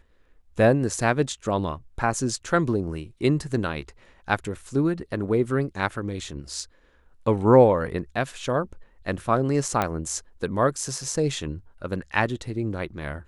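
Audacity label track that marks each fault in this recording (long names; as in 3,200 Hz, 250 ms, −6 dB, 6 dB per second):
9.820000	9.820000	click −10 dBFS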